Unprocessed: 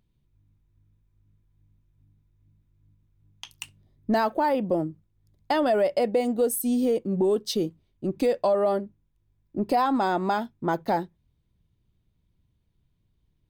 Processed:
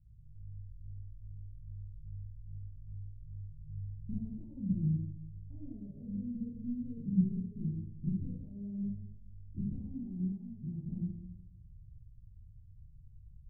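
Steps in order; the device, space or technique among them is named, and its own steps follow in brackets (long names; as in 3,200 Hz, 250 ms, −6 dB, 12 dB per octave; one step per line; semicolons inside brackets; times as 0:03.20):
club heard from the street (brickwall limiter −23.5 dBFS, peak gain reduction 10 dB; low-pass filter 120 Hz 24 dB per octave; convolution reverb RT60 0.90 s, pre-delay 16 ms, DRR −6 dB)
0:10.32–0:10.86: low-shelf EQ 390 Hz −6.5 dB
level +9.5 dB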